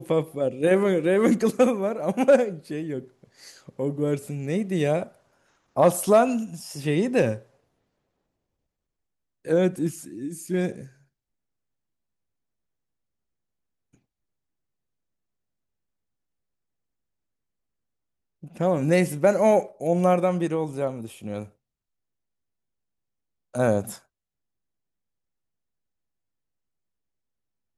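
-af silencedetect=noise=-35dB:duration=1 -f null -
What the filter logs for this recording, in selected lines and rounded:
silence_start: 7.38
silence_end: 9.47 | silence_duration: 2.09
silence_start: 10.85
silence_end: 18.44 | silence_duration: 7.59
silence_start: 21.45
silence_end: 23.55 | silence_duration: 2.10
silence_start: 23.96
silence_end: 27.78 | silence_duration: 3.82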